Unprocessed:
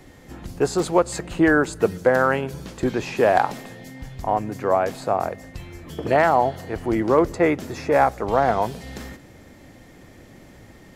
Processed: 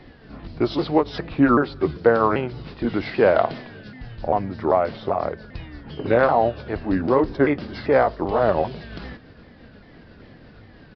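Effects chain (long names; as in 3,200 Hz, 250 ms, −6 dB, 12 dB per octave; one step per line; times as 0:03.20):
pitch shifter swept by a sawtooth −4.5 semitones, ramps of 393 ms
downsampling to 11,025 Hz
level +1.5 dB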